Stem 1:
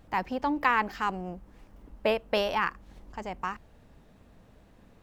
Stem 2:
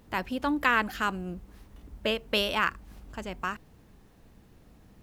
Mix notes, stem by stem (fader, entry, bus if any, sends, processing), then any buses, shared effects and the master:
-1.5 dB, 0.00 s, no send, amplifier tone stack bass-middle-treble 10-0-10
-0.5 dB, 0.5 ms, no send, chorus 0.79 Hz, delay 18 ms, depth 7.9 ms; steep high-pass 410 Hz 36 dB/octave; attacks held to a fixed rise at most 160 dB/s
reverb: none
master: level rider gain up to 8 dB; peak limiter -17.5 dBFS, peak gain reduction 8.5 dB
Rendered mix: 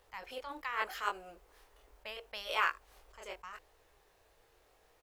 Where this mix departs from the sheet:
stem 1 -1.5 dB -> -8.5 dB; master: missing level rider gain up to 8 dB

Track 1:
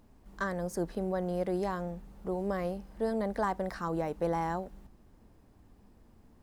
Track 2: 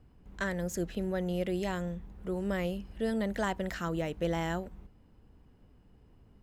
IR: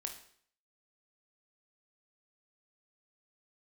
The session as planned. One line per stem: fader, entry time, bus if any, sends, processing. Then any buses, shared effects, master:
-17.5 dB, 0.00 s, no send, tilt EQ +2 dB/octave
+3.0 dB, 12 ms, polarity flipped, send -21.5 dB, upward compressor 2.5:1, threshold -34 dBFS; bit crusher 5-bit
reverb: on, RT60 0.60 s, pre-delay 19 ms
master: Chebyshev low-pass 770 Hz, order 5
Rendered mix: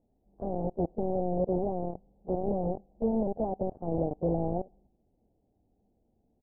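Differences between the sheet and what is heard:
stem 1 -17.5 dB -> -6.0 dB; stem 2: polarity flipped

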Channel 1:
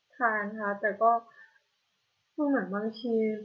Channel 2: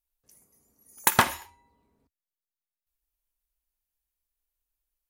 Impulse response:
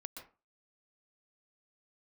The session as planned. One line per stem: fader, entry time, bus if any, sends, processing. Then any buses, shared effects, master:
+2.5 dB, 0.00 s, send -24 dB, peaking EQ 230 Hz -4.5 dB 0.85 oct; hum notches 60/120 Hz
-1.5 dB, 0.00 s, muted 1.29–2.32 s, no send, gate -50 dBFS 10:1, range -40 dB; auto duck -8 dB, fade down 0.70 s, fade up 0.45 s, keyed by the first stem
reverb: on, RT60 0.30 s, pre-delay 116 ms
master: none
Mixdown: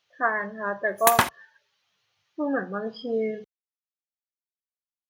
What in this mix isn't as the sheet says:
stem 2 -1.5 dB -> +8.0 dB; master: extra high-pass 47 Hz

